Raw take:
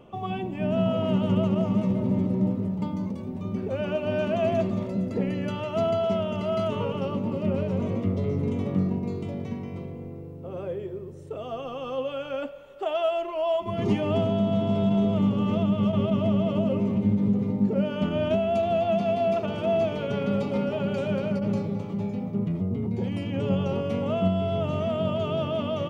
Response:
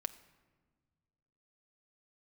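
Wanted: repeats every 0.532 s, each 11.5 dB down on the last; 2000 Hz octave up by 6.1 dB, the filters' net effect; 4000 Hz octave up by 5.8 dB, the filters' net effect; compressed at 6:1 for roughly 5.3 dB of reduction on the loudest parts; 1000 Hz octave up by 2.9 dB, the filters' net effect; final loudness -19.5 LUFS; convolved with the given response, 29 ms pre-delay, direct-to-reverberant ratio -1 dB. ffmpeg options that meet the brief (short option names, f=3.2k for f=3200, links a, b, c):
-filter_complex "[0:a]equalizer=f=1k:t=o:g=3,equalizer=f=2k:t=o:g=6,equalizer=f=4k:t=o:g=5,acompressor=threshold=-24dB:ratio=6,aecho=1:1:532|1064|1596:0.266|0.0718|0.0194,asplit=2[a][b];[1:a]atrim=start_sample=2205,adelay=29[c];[b][c]afir=irnorm=-1:irlink=0,volume=2dB[d];[a][d]amix=inputs=2:normalize=0,volume=6dB"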